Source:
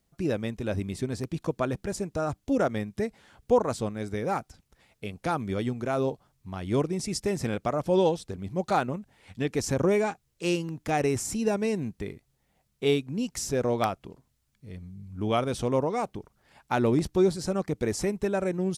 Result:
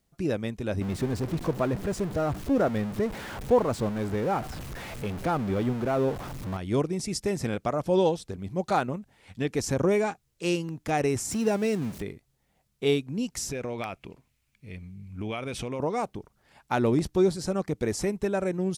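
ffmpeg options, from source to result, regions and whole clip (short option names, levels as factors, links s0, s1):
-filter_complex "[0:a]asettb=1/sr,asplit=3[s0][s1][s2];[s0]atrim=end=0.814[s3];[s1]atrim=start=0.81:end=6.57,asetpts=PTS-STARTPTS,afade=t=in:d=0.004:c=qsin,afade=t=out:st=5.756:d=0.004:c=qsin,aeval=exprs='val(0)+0.5*0.0316*sgn(val(0))':c=same,highshelf=f=2700:g=-10[s4];[s2]atrim=start=6.566[s5];[s3][s4]acrossfade=d=0.004:c1=hsin:c2=qsin[s6];[s6][s5]acrossfade=d=0.004:c1=qsin:c2=hsin,asettb=1/sr,asplit=3[s7][s8][s9];[s7]atrim=end=11.314[s10];[s8]atrim=start=11.31:end=12.02,asetpts=PTS-STARTPTS,afade=t=in:d=0.004:c=qsin,afade=t=out:st=0.706:d=0.004:c=qsin,aeval=exprs='val(0)+0.5*0.0158*sgn(val(0))':c=same,highpass=67[s11];[s9]atrim=start=12.016[s12];[s10][s11]acrossfade=d=0.004:c1=hsin:c2=qsin[s13];[s13][s12]acrossfade=d=0.004:c1=qsin:c2=hsin,asettb=1/sr,asplit=3[s14][s15][s16];[s14]atrim=end=13.514[s17];[s15]atrim=start=13.51:end=15.8,asetpts=PTS-STARTPTS,afade=t=in:d=0.004:c=qsin,afade=t=out:st=2.286:d=0.004:c=qsin,equalizer=f=2400:w=2.4:g=12,acompressor=threshold=0.0355:ratio=6:attack=3.2:release=140:knee=1:detection=peak[s18];[s16]atrim=start=15.796[s19];[s17][s18]acrossfade=d=0.004:c1=hsin:c2=qsin[s20];[s20][s19]acrossfade=d=0.004:c1=qsin:c2=hsin"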